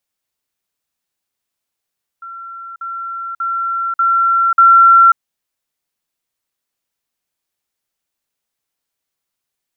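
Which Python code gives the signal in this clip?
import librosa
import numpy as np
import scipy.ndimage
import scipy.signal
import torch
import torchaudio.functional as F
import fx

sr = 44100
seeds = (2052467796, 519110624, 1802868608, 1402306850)

y = fx.level_ladder(sr, hz=1360.0, from_db=-28.0, step_db=6.0, steps=5, dwell_s=0.54, gap_s=0.05)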